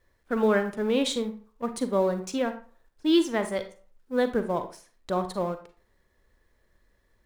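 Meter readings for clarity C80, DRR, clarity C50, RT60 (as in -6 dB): 16.0 dB, 8.5 dB, 11.0 dB, 0.40 s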